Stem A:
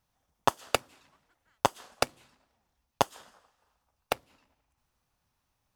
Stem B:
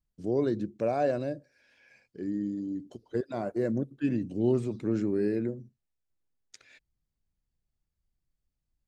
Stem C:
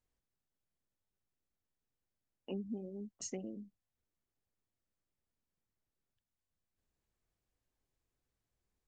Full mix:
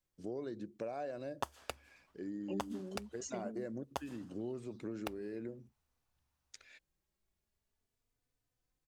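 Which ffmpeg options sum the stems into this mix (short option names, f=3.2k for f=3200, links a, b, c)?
-filter_complex "[0:a]equalizer=f=70:t=o:w=0.27:g=15,adelay=950,volume=-8.5dB[a];[1:a]lowshelf=f=270:g=-9.5,acompressor=threshold=-36dB:ratio=6,volume=-2.5dB[b];[2:a]asplit=2[c][d];[d]adelay=3.3,afreqshift=0.44[e];[c][e]amix=inputs=2:normalize=1,volume=2dB[f];[a][b][f]amix=inputs=3:normalize=0,alimiter=limit=-20dB:level=0:latency=1:release=321"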